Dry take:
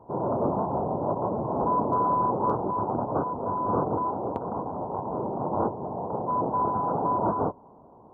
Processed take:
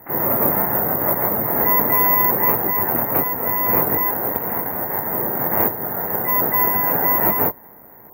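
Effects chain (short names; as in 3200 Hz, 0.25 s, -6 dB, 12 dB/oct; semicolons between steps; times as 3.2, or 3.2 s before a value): careless resampling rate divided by 3×, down filtered, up zero stuff; harmoniser +12 st -7 dB; gain +3 dB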